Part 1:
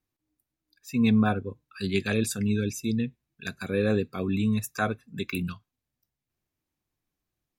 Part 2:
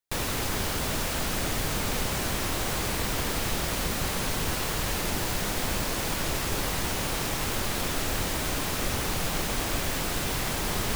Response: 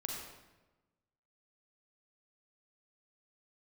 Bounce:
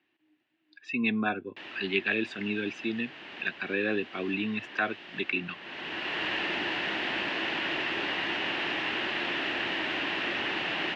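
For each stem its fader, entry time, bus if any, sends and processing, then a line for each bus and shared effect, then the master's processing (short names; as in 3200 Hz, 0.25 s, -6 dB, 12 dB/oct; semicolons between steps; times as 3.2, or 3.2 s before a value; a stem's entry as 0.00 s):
0.0 dB, 0.00 s, no send, dry
-1.5 dB, 1.45 s, no send, auto duck -16 dB, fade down 1.75 s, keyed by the first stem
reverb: off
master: speaker cabinet 320–3500 Hz, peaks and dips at 330 Hz +7 dB, 490 Hz -7 dB, 1200 Hz -4 dB, 1800 Hz +8 dB, 2800 Hz +10 dB; three-band squash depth 40%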